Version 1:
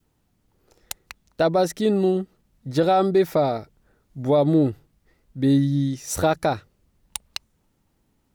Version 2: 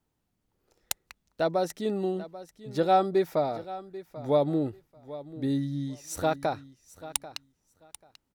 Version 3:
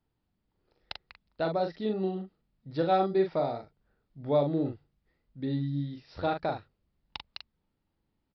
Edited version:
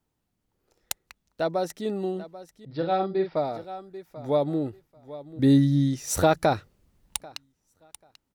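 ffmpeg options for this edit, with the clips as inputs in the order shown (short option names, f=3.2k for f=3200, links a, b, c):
-filter_complex "[1:a]asplit=3[a][b][c];[a]atrim=end=2.652[d];[2:a]atrim=start=2.648:end=3.362[e];[b]atrim=start=3.358:end=5.392[f];[0:a]atrim=start=5.388:end=7.212[g];[c]atrim=start=7.208[h];[d][e]acrossfade=d=0.004:c1=hsin:c2=hsin[i];[i][f]acrossfade=d=0.004:c1=hsin:c2=hsin[j];[j][g]acrossfade=d=0.004:c1=hsin:c2=hsin[k];[k][h]acrossfade=d=0.004:c1=hsin:c2=hsin"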